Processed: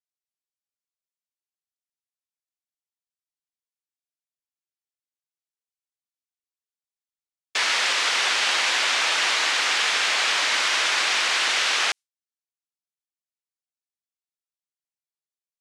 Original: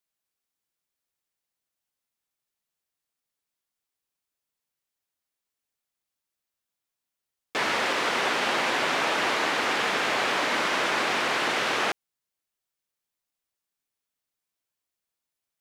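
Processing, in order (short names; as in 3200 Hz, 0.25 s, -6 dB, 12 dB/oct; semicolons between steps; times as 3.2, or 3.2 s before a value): weighting filter ITU-R 468; gate with hold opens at -15 dBFS; gain -1.5 dB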